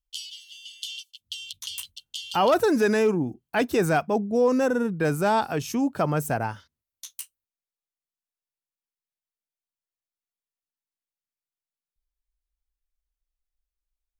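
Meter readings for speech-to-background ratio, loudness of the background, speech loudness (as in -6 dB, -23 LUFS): 13.0 dB, -37.0 LUFS, -24.0 LUFS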